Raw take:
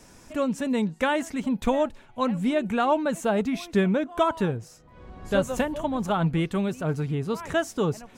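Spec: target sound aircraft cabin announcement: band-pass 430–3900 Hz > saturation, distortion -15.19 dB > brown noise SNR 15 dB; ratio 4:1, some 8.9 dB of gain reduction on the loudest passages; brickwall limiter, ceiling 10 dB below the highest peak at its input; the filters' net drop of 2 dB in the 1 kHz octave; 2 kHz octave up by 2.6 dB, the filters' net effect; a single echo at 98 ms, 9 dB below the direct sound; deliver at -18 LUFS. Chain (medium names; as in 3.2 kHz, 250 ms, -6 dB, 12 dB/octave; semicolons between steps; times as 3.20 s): peaking EQ 1 kHz -3.5 dB; peaking EQ 2 kHz +5 dB; compression 4:1, threshold -29 dBFS; peak limiter -27.5 dBFS; band-pass 430–3900 Hz; delay 98 ms -9 dB; saturation -33.5 dBFS; brown noise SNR 15 dB; trim +24 dB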